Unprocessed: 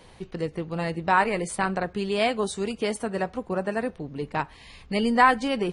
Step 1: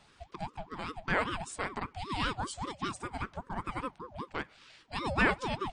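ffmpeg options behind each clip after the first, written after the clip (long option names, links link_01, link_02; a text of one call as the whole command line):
ffmpeg -i in.wav -af "afftfilt=real='re*between(b*sr/4096,230,9100)':imag='im*between(b*sr/4096,230,9100)':win_size=4096:overlap=0.75,equalizer=frequency=840:width=0.44:gain=-3,aeval=exprs='val(0)*sin(2*PI*550*n/s+550*0.45/5.1*sin(2*PI*5.1*n/s))':channel_layout=same,volume=-3.5dB" out.wav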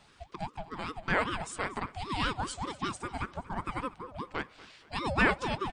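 ffmpeg -i in.wav -af "aecho=1:1:237|474|711:0.112|0.0482|0.0207,volume=1.5dB" out.wav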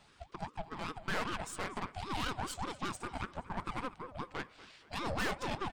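ffmpeg -i in.wav -af "aeval=exprs='(tanh(44.7*val(0)+0.75)-tanh(0.75))/44.7':channel_layout=same,volume=1.5dB" out.wav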